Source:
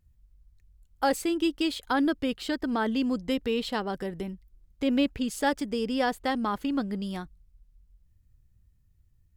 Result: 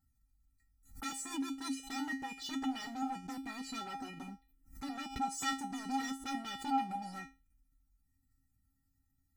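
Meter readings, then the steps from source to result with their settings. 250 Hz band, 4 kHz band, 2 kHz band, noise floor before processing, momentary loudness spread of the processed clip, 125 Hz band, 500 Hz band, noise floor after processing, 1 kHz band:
-12.5 dB, -9.0 dB, -9.5 dB, -65 dBFS, 11 LU, -13.0 dB, -26.5 dB, -78 dBFS, -6.5 dB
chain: vibrato 5.6 Hz 87 cents; compressor 1.5:1, threshold -35 dBFS, peak gain reduction 6 dB; envelope phaser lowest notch 460 Hz, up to 3600 Hz, full sweep at -31 dBFS; wavefolder -35 dBFS; resonator 270 Hz, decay 0.25 s, harmonics odd, mix 100%; backwards sustainer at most 130 dB/s; gain +16 dB

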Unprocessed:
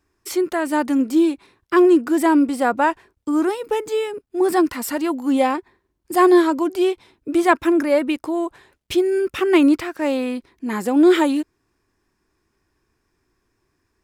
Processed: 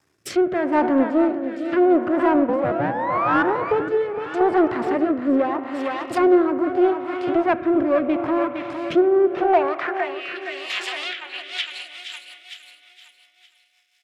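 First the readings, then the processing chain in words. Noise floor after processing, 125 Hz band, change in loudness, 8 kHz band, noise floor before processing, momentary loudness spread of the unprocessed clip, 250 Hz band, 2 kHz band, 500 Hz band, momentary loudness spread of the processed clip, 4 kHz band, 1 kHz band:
-62 dBFS, n/a, -2.0 dB, under -10 dB, -72 dBFS, 11 LU, -3.0 dB, -1.0 dB, -0.5 dB, 12 LU, +1.0 dB, +0.5 dB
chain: painted sound rise, 2.48–3.43, 480–1500 Hz -17 dBFS; half-wave rectifier; low shelf 500 Hz -7.5 dB; high-pass sweep 120 Hz -> 2900 Hz, 8.8–10.16; vocal rider within 4 dB 0.5 s; on a send: feedback echo 0.461 s, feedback 43%, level -8.5 dB; on the sum: spring tank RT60 4 s, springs 33 ms, chirp 75 ms, DRR 11 dB; treble ducked by the level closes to 1300 Hz, closed at -25 dBFS; rotary speaker horn 0.8 Hz, later 5.5 Hz, at 10.79; in parallel at -5.5 dB: soft clip -24 dBFS, distortion -13 dB; on the sum: gain +6 dB

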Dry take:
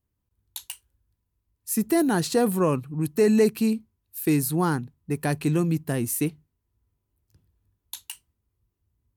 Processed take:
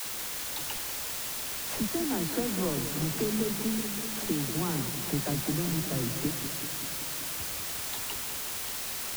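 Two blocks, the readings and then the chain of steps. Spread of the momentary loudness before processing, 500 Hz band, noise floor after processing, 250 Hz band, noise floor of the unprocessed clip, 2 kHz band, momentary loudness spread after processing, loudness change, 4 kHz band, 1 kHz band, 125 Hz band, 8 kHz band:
20 LU, -10.0 dB, -36 dBFS, -7.5 dB, -79 dBFS, -1.5 dB, 3 LU, -6.5 dB, +5.5 dB, -6.5 dB, -6.0 dB, +2.5 dB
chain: block floating point 3-bit; LPF 4300 Hz; tilt shelf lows +6 dB, about 1300 Hz; harmonic-percussive split percussive +5 dB; low shelf 120 Hz +7.5 dB; compressor 4:1, threshold -33 dBFS, peak gain reduction 19.5 dB; requantised 6-bit, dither triangular; dispersion lows, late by 62 ms, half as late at 320 Hz; warbling echo 0.192 s, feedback 73%, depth 137 cents, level -10 dB

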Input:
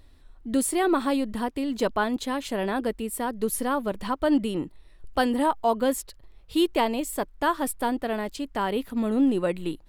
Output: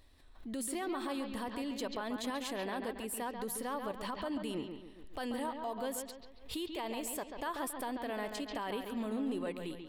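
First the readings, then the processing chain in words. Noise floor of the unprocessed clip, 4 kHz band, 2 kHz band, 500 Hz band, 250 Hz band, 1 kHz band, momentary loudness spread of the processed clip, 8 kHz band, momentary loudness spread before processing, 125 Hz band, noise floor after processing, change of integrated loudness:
-53 dBFS, -8.5 dB, -11.0 dB, -12.5 dB, -13.0 dB, -12.5 dB, 5 LU, -9.0 dB, 7 LU, -12.0 dB, -54 dBFS, -12.5 dB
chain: low shelf 410 Hz -7.5 dB; notch 1400 Hz, Q 13; in parallel at -1 dB: compressor, threshold -34 dBFS, peak gain reduction 13.5 dB; on the sum: limiter -21.5 dBFS, peak gain reduction 11 dB; on a send: analogue delay 0.138 s, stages 4096, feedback 43%, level -7 dB; on the sum: backwards sustainer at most 110 dB/s; gain -9 dB

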